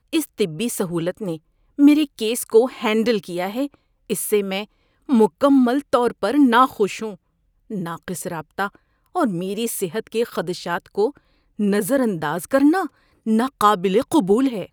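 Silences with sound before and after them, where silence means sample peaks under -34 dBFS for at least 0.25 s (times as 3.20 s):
1.37–1.79 s
3.67–4.10 s
4.64–5.09 s
7.15–7.70 s
8.75–9.15 s
11.10–11.59 s
12.87–13.26 s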